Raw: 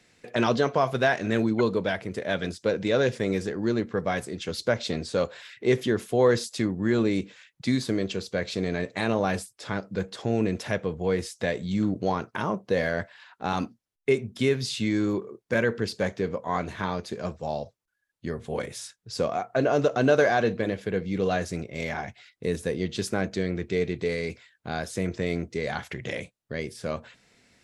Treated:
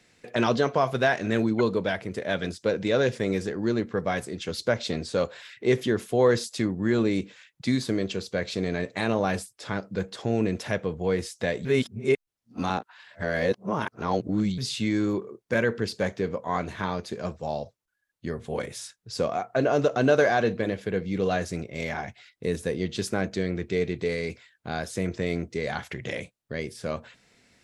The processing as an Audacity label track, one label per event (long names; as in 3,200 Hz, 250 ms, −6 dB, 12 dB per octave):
11.650000	14.580000	reverse